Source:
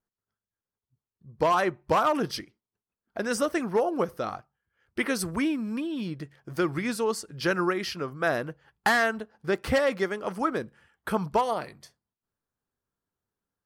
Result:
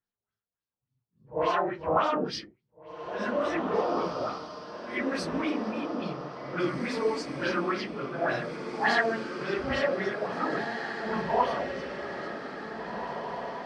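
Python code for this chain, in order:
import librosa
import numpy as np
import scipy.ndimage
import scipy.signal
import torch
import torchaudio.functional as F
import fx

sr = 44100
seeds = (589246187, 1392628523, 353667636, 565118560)

y = fx.phase_scramble(x, sr, seeds[0], window_ms=200)
y = fx.filter_lfo_lowpass(y, sr, shape='sine', hz=3.5, low_hz=620.0, high_hz=5200.0, q=2.0)
y = fx.echo_diffused(y, sr, ms=1910, feedback_pct=51, wet_db=-6.5)
y = F.gain(torch.from_numpy(y), -4.0).numpy()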